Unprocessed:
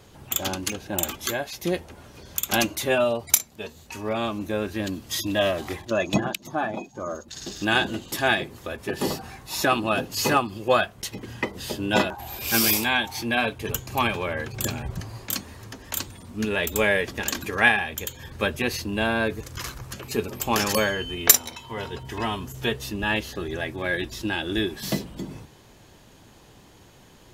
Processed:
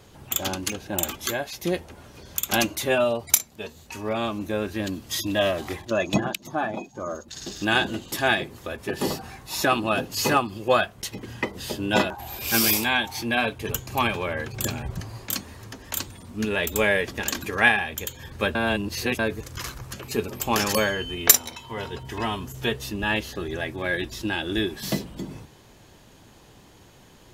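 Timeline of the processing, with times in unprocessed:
18.55–19.19 reverse

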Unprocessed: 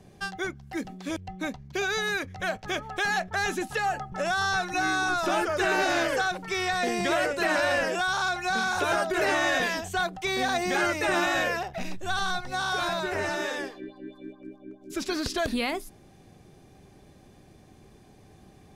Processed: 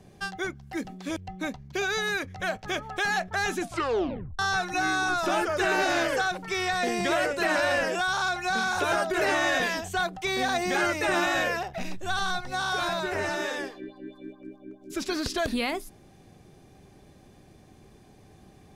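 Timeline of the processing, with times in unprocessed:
3.59 tape stop 0.80 s

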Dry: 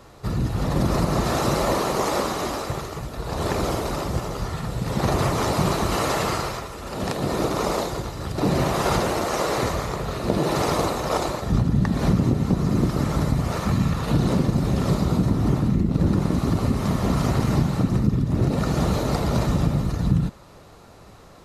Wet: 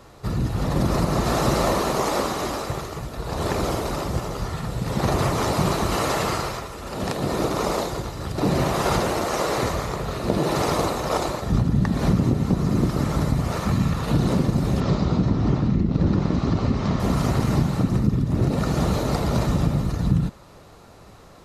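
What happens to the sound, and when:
0.98–1.41 echo throw 0.29 s, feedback 55%, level -5.5 dB
14.8–17 LPF 5900 Hz 24 dB/oct

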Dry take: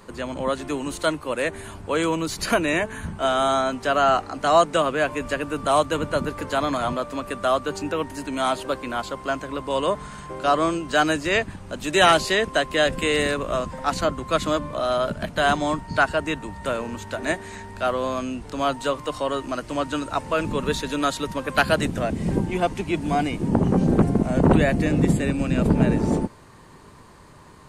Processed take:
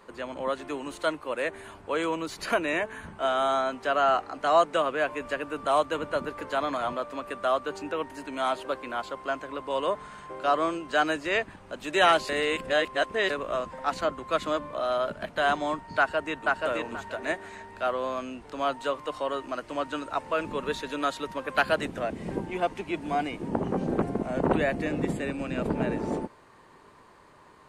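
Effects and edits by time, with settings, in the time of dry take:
12.29–13.3 reverse
15.98–16.61 echo throw 0.48 s, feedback 20%, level -2 dB
whole clip: tone controls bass -11 dB, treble -8 dB; gain -4 dB

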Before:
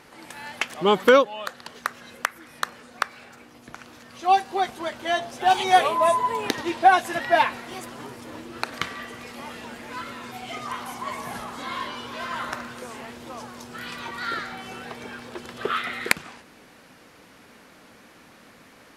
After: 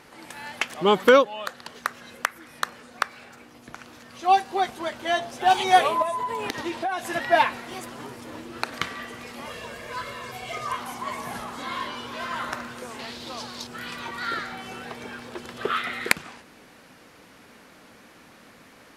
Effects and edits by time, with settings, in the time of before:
6.02–7.09 compressor 5:1, threshold -25 dBFS
9.45–10.77 comb 1.8 ms, depth 68%
12.99–13.67 bell 4200 Hz +14.5 dB 0.9 oct

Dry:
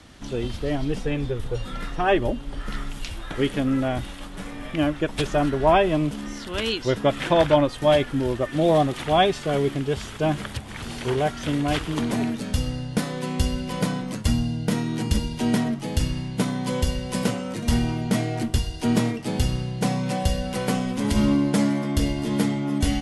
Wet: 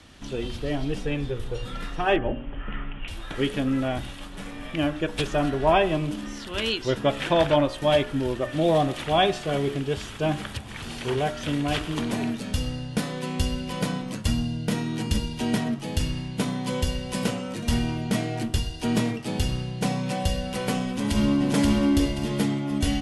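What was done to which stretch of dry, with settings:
2.16–3.08 steep low-pass 3100 Hz 72 dB/oct
20.87–21.52 echo throw 0.53 s, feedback 30%, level -0.5 dB
whole clip: bell 2700 Hz +3 dB 0.96 oct; notch 2100 Hz, Q 24; de-hum 60.58 Hz, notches 29; gain -2 dB

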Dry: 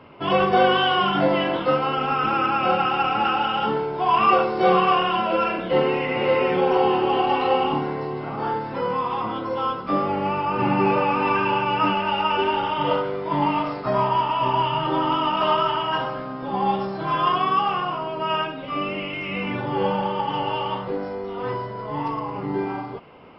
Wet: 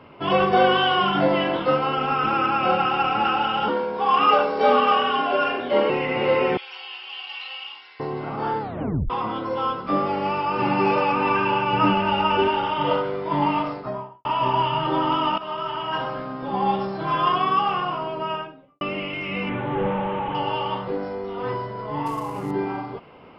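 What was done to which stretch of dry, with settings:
3.68–5.9 frequency shift +62 Hz
6.57–8 Butterworth band-pass 3900 Hz, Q 1
8.6 tape stop 0.50 s
10.06–11.12 tone controls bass -4 dB, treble +9 dB
11.73–12.48 low shelf 360 Hz +7 dB
13.55–14.25 studio fade out
15.38–16.17 fade in, from -15.5 dB
18.05–18.81 studio fade out
19.49–20.35 delta modulation 16 kbps, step -34 dBFS
22.06–22.51 CVSD 64 kbps

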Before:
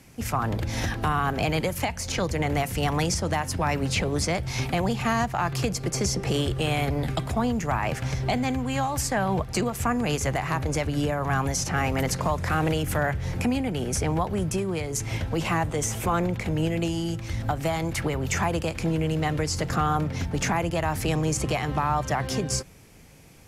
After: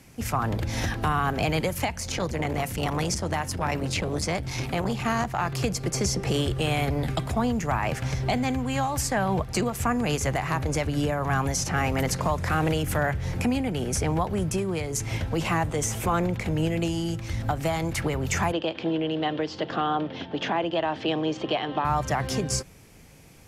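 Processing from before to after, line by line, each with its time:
1.89–5.61 core saturation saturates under 450 Hz
18.52–21.85 speaker cabinet 270–3900 Hz, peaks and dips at 320 Hz +5 dB, 640 Hz +3 dB, 1300 Hz -4 dB, 2200 Hz -7 dB, 3200 Hz +9 dB

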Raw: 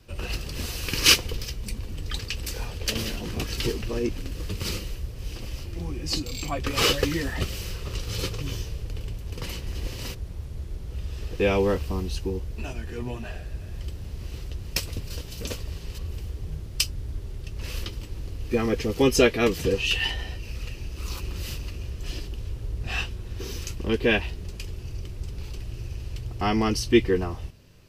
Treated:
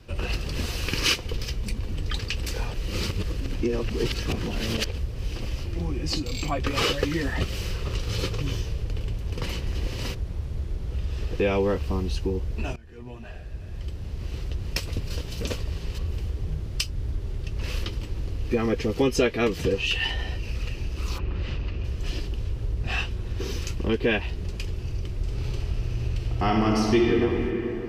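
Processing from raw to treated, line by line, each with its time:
2.74–4.98 reverse
12.76–14.64 fade in, from -22 dB
21.17–21.83 LPF 2000 Hz -> 3700 Hz
25.14–27.13 reverb throw, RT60 2.4 s, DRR -1.5 dB
whole clip: compressor 2:1, threshold -29 dBFS; high shelf 6800 Hz -11 dB; gain +5 dB

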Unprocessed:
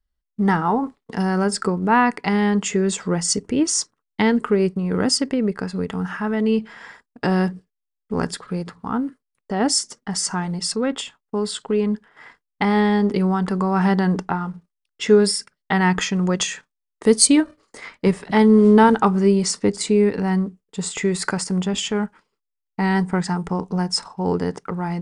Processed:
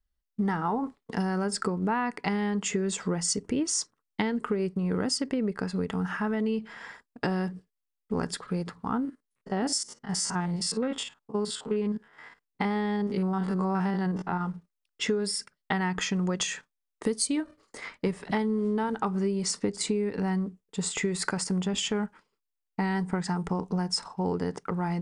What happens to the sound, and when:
9.05–14.41 stepped spectrum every 50 ms
whole clip: compressor 12:1, threshold -21 dBFS; gain -3 dB

